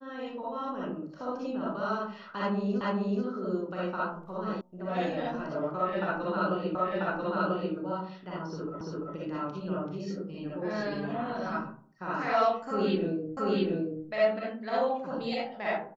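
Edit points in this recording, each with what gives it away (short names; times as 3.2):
2.81 repeat of the last 0.43 s
4.61 sound cut off
6.75 repeat of the last 0.99 s
8.81 repeat of the last 0.34 s
13.37 repeat of the last 0.68 s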